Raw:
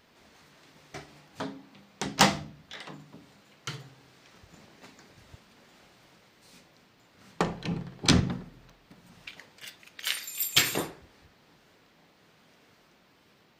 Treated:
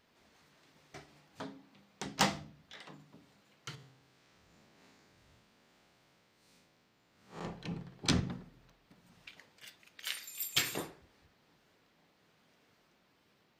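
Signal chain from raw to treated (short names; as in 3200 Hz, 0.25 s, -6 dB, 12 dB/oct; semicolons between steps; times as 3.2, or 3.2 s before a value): 3.75–7.45 time blur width 0.124 s; gain -8.5 dB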